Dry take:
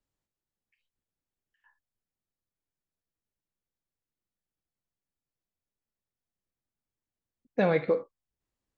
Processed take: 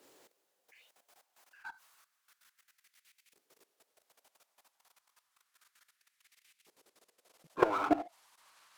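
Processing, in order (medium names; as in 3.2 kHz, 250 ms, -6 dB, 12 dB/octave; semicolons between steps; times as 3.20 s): pitch bend over the whole clip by -9.5 st starting unshifted; level held to a coarse grid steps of 23 dB; LFO high-pass saw up 0.3 Hz 370–2400 Hz; power-law waveshaper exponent 0.7; trim +8.5 dB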